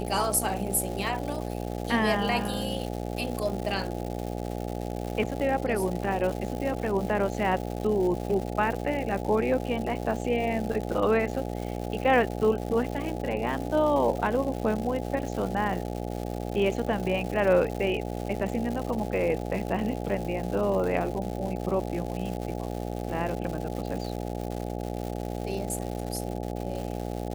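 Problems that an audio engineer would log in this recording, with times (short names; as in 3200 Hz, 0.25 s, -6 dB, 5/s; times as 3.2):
buzz 60 Hz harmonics 14 -33 dBFS
crackle 270/s -33 dBFS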